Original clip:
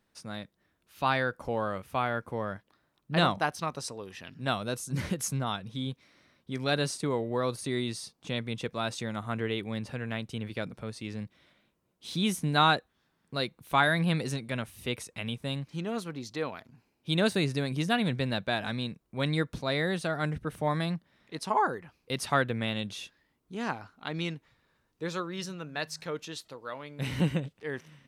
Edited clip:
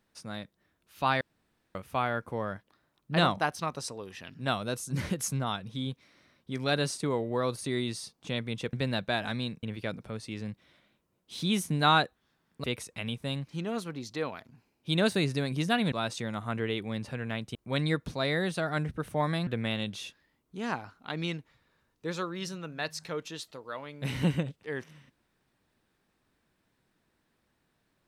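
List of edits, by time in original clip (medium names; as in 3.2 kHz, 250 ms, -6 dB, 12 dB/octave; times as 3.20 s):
1.21–1.75 s: room tone
8.73–10.36 s: swap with 18.12–19.02 s
13.37–14.84 s: delete
20.94–22.44 s: delete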